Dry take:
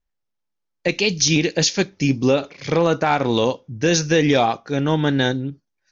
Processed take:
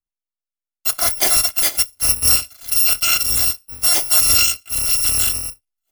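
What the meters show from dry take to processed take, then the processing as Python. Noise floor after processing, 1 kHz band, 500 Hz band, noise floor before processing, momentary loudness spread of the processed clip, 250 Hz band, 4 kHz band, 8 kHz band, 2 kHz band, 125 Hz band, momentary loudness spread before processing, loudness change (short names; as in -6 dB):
under -85 dBFS, -7.5 dB, -16.5 dB, -77 dBFS, 7 LU, -21.0 dB, +5.0 dB, n/a, -1.5 dB, -12.5 dB, 6 LU, +5.0 dB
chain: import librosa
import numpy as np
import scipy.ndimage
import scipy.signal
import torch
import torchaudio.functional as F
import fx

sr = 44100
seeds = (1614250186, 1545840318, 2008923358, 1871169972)

y = fx.bit_reversed(x, sr, seeds[0], block=256)
y = fx.band_widen(y, sr, depth_pct=40)
y = y * 10.0 ** (2.0 / 20.0)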